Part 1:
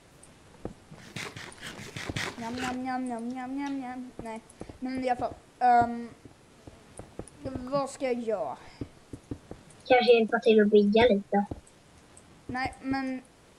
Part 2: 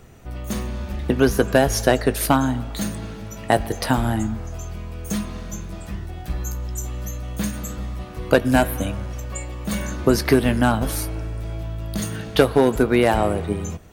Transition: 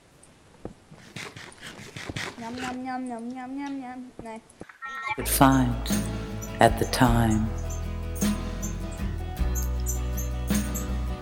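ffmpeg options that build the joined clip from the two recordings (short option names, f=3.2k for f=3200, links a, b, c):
-filter_complex "[0:a]asettb=1/sr,asplit=3[a][b][c];[a]atrim=end=4.634[d];[b]atrim=start=4.63:end=5.29,asetpts=PTS-STARTPTS,afade=t=in:d=0.004:c=qsin,afade=t=out:st=0.656:d=0.004:c=qsin,aeval=exprs='val(0)*sin(2*PI*1600*n/s)':c=same[e];[c]atrim=start=5.286[f];[d][e]acrossfade=d=0.004:c1=hsin:c2=qsin[g];[g][f]acrossfade=d=0.004:c1=qsin:c2=hsin,apad=whole_dur=11.21,atrim=end=11.21,atrim=end=5.29,asetpts=PTS-STARTPTS[h];[1:a]atrim=start=2.06:end=8.1,asetpts=PTS-STARTPTS[i];[h][i]acrossfade=d=0.12:c1=tri:c2=tri"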